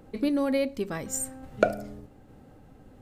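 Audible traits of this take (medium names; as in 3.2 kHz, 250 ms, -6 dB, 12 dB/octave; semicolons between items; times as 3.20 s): random-step tremolo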